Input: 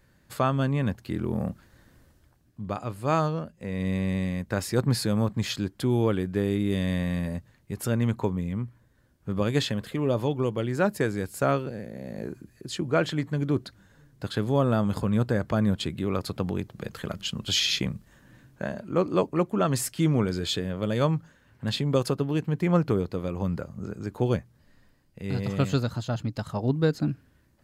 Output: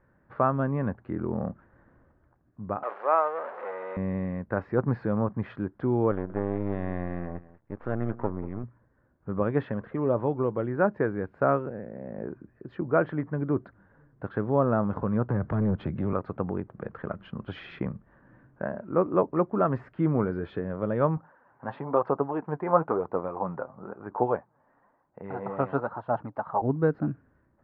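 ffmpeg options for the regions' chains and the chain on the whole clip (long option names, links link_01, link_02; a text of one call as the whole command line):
ffmpeg -i in.wav -filter_complex "[0:a]asettb=1/sr,asplit=3[link_01][link_02][link_03];[link_01]atrim=end=2.834[link_04];[link_02]atrim=start=2.83:end=3.97,asetpts=PTS-STARTPTS,afade=type=in:duration=0.004:curve=qsin,afade=type=out:start_time=1.136:duration=0.004:curve=qsin,aeval=exprs='val(0)+0.5*0.0473*sgn(val(0))':channel_layout=same,deesser=0.3,highpass=frequency=480:width=0.5412,highpass=frequency=480:width=1.3066[link_05];[link_03]atrim=start=3.966[link_06];[link_04][link_05]acrossfade=duration=0.004:curve1=hsin:curve2=qsin[link_07];[link_07][link_06]acrossfade=duration=0.004:curve1=qsin:curve2=hsin,asettb=1/sr,asplit=3[link_08][link_09][link_10];[link_08]atrim=end=6.114[link_11];[link_09]atrim=start=6.11:end=8.64,asetpts=PTS-STARTPTS,afade=type=in:duration=0.004:curve=qsin,afade=type=out:start_time=2.526:duration=0.004:curve=qsin,aeval=exprs='max(val(0),0)':channel_layout=same,aecho=1:1:187:0.133,atrim=end_sample=111573[link_12];[link_10]atrim=start=8.636[link_13];[link_11][link_12]acrossfade=duration=0.004:curve1=hsin:curve2=qsin[link_14];[link_14][link_13]acrossfade=duration=0.004:curve1=qsin:curve2=hsin,asettb=1/sr,asplit=3[link_15][link_16][link_17];[link_15]atrim=end=15.304[link_18];[link_16]atrim=start=15.3:end=16.13,asetpts=PTS-STARTPTS,afade=type=in:duration=0.004:curve=qsin,afade=type=out:start_time=0.826:duration=0.004:curve=qsin,acrossover=split=200|3000[link_19][link_20][link_21];[link_20]acompressor=threshold=-43dB:ratio=2.5:attack=3.2:release=140:knee=2.83:detection=peak[link_22];[link_19][link_22][link_21]amix=inputs=3:normalize=0,aeval=exprs='0.126*sin(PI/2*1.58*val(0)/0.126)':channel_layout=same[link_23];[link_17]atrim=start=16.126[link_24];[link_18][link_23]acrossfade=duration=0.004:curve1=hsin:curve2=qsin[link_25];[link_25][link_24]acrossfade=duration=0.004:curve1=qsin:curve2=hsin,asettb=1/sr,asplit=3[link_26][link_27][link_28];[link_26]atrim=end=21.174[link_29];[link_27]atrim=start=21.17:end=26.62,asetpts=PTS-STARTPTS,afade=type=in:duration=0.004:curve=qsin,afade=type=out:start_time=5.446:duration=0.004:curve=qsin,highpass=frequency=220:poles=1,equalizer=frequency=860:width=1.1:gain=13.5,flanger=delay=0:depth=7.9:regen=44:speed=1:shape=sinusoidal[link_30];[link_28]atrim=start=26.616[link_31];[link_29][link_30]acrossfade=duration=0.004:curve1=hsin:curve2=qsin[link_32];[link_32][link_31]acrossfade=duration=0.004:curve1=qsin:curve2=hsin,lowpass=frequency=1500:width=0.5412,lowpass=frequency=1500:width=1.3066,lowshelf=frequency=250:gain=-8,volume=2.5dB" out.wav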